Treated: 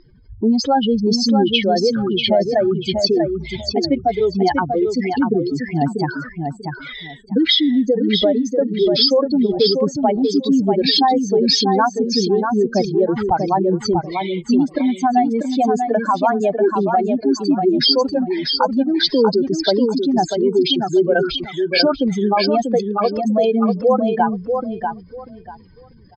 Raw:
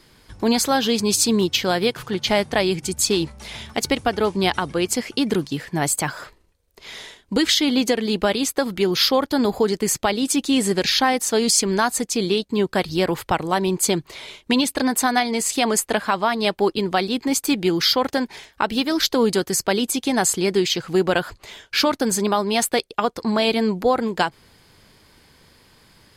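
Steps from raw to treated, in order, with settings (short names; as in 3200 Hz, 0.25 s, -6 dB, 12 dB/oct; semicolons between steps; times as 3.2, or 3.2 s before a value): spectral contrast raised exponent 3.2; elliptic low-pass 5300 Hz, stop band 50 dB; feedback echo 0.641 s, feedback 21%, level -5.5 dB; gain +5 dB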